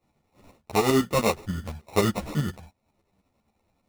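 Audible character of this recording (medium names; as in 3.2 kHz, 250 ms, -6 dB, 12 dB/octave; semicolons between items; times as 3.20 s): tremolo saw up 10 Hz, depth 65%; aliases and images of a low sample rate 1.6 kHz, jitter 0%; a shimmering, thickened sound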